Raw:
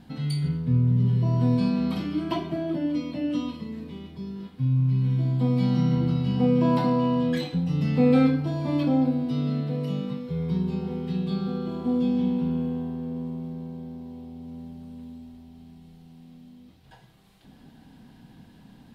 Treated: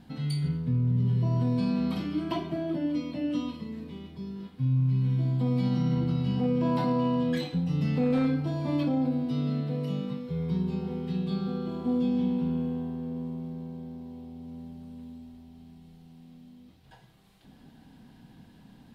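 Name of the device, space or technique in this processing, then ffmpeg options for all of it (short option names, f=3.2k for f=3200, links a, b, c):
clipper into limiter: -af "asoftclip=type=hard:threshold=-12.5dB,alimiter=limit=-16.5dB:level=0:latency=1:release=30,volume=-2.5dB"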